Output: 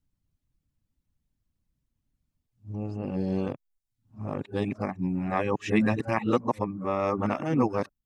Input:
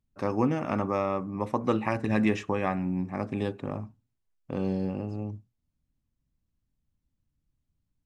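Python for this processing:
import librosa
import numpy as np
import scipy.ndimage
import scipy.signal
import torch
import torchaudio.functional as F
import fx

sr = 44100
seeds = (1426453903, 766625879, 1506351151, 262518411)

y = np.flip(x).copy()
y = fx.dereverb_blind(y, sr, rt60_s=0.51)
y = F.gain(torch.from_numpy(y), 2.0).numpy()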